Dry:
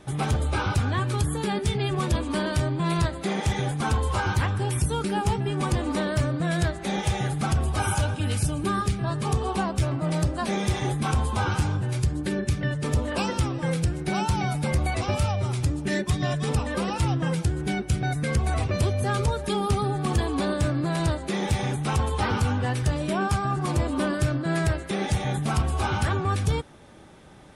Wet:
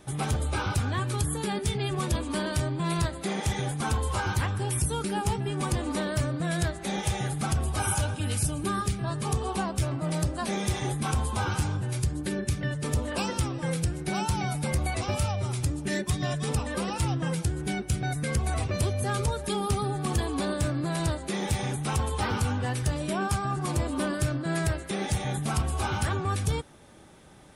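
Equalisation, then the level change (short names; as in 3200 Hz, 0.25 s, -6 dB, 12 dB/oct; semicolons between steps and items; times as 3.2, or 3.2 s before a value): high shelf 7900 Hz +10.5 dB; -3.5 dB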